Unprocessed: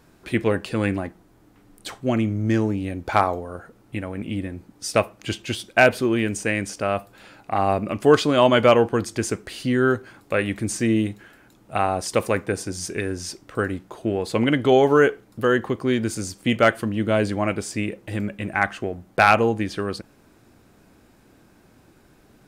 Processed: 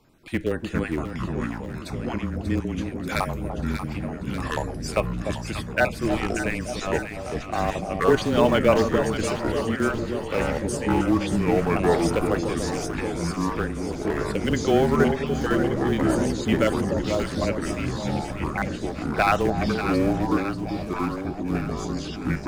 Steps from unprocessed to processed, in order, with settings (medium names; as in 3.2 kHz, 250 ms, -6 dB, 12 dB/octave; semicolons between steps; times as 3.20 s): random holes in the spectrogram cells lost 21%; 3.05–3.50 s: tilt EQ +4 dB/octave; in parallel at -6 dB: Schmitt trigger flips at -15.5 dBFS; on the sum: frequency shift -22 Hz; on a send: echo whose repeats swap between lows and highs 294 ms, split 820 Hz, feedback 79%, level -6 dB; on the sum: ever faster or slower copies 295 ms, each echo -5 st, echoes 2; trim -5 dB